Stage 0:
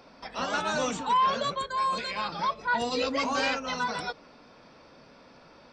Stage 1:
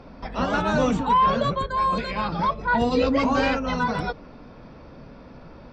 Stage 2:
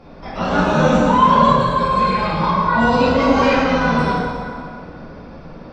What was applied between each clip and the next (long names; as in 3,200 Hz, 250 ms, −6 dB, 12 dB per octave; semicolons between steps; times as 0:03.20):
RIAA equalisation playback; level +5 dB
dense smooth reverb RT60 2.3 s, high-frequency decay 0.7×, DRR −8.5 dB; level −2 dB